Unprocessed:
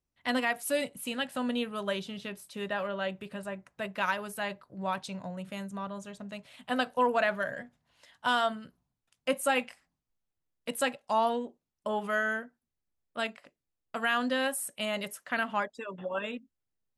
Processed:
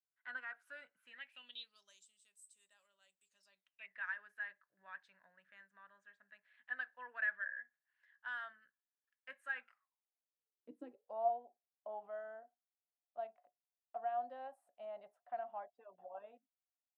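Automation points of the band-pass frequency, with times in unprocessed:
band-pass, Q 15
1.01 s 1500 Hz
2.07 s 8000 Hz
3.23 s 8000 Hz
3.99 s 1700 Hz
9.54 s 1700 Hz
10.78 s 290 Hz
11.3 s 720 Hz

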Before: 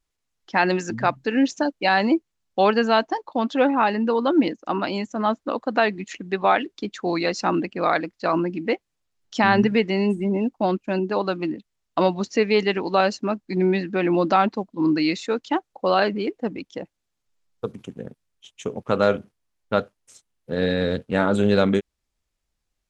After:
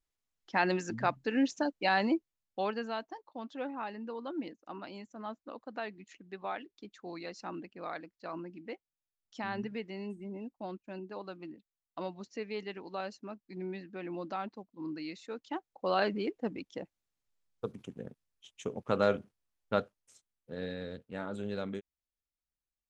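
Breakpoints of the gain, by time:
2.03 s -9 dB
3.04 s -19.5 dB
15.13 s -19.5 dB
16.1 s -8.5 dB
19.76 s -8.5 dB
20.9 s -19 dB

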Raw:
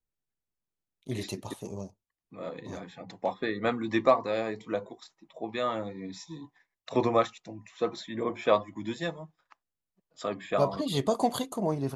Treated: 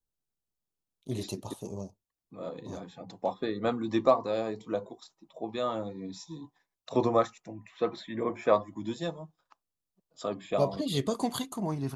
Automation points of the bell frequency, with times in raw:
bell -11 dB 0.78 oct
7.04 s 2000 Hz
7.85 s 7700 Hz
8.81 s 2000 Hz
10.36 s 2000 Hz
11.38 s 530 Hz

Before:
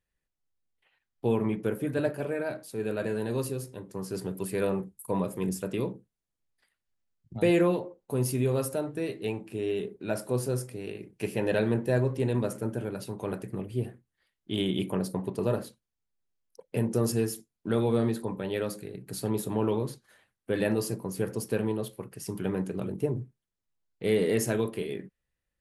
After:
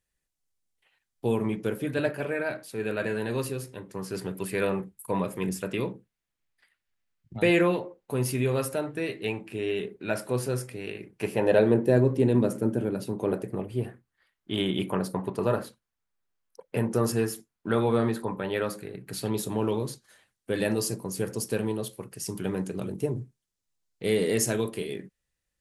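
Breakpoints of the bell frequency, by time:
bell +8 dB 1.8 oct
1.35 s 8500 Hz
2.16 s 2100 Hz
10.91 s 2100 Hz
11.99 s 270 Hz
13.15 s 270 Hz
13.86 s 1300 Hz
18.96 s 1300 Hz
19.51 s 6800 Hz

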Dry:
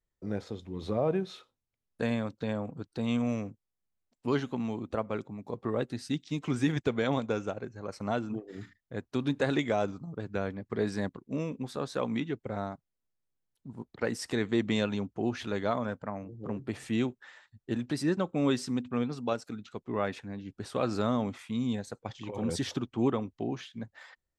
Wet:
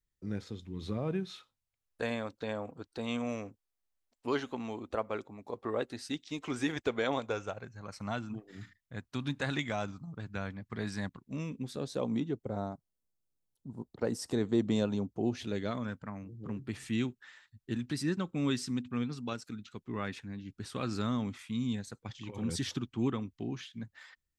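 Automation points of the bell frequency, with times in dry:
bell -12 dB 1.5 oct
1.17 s 660 Hz
2.13 s 150 Hz
7.11 s 150 Hz
7.83 s 430 Hz
11.31 s 430 Hz
12.16 s 2100 Hz
15.06 s 2100 Hz
15.91 s 620 Hz

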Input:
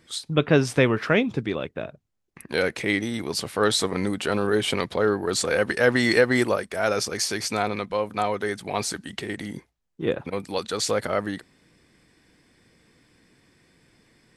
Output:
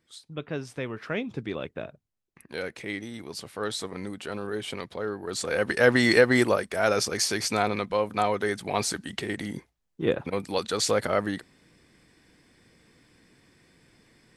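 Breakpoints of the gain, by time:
0.8 s -14.5 dB
1.7 s -3 dB
2.51 s -10 dB
5.17 s -10 dB
5.82 s 0 dB

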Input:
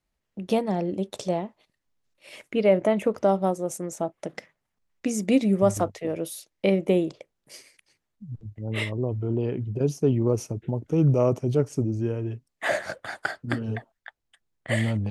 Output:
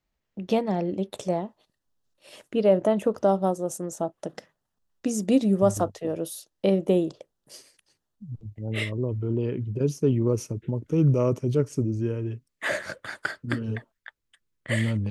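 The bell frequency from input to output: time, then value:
bell -13 dB 0.35 oct
1 s 9700 Hz
1.43 s 2200 Hz
8.25 s 2200 Hz
8.97 s 740 Hz

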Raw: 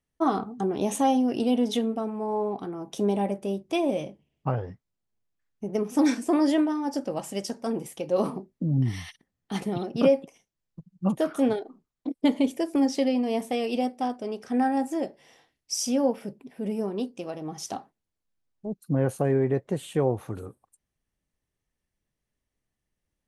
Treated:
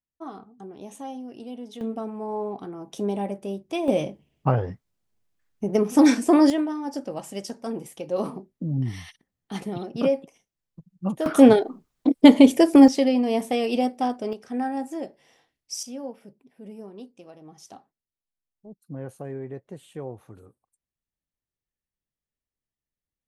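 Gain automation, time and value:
-14 dB
from 1.81 s -2 dB
from 3.88 s +6 dB
from 6.5 s -2 dB
from 11.26 s +11 dB
from 12.88 s +3.5 dB
from 14.33 s -3.5 dB
from 15.83 s -11.5 dB

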